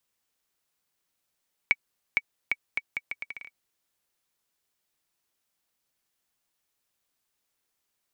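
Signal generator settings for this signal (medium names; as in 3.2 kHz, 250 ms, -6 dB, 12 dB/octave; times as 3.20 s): bouncing ball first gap 0.46 s, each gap 0.75, 2.26 kHz, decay 42 ms -8 dBFS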